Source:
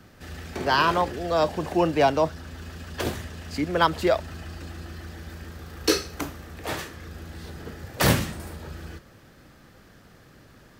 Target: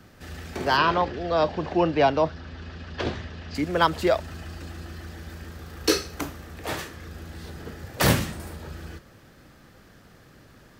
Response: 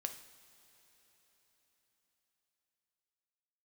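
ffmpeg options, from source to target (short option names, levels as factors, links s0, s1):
-filter_complex "[0:a]asettb=1/sr,asplit=3[s0][s1][s2];[s0]atrim=end=0.774[s3];[s1]atrim=start=0.77:end=3.55,asetpts=PTS-STARTPTS,afade=t=in:d=0.004:c=qsin,afade=t=out:st=2.776:d=0.004:c=qsin,lowpass=f=5000:w=0.5412,lowpass=f=5000:w=1.3066[s4];[s2]atrim=start=3.546[s5];[s3][s4]acrossfade=d=0.004:c1=hsin:c2=qsin[s6];[s6][s5]acrossfade=d=0.004:c1=qsin:c2=hsin"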